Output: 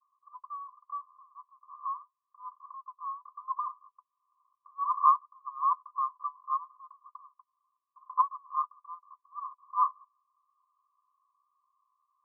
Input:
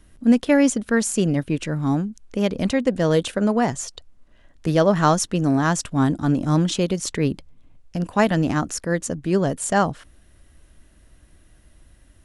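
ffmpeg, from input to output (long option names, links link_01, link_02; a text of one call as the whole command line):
ffmpeg -i in.wav -af "asuperpass=centerf=1100:order=20:qfactor=5.1,volume=4dB" out.wav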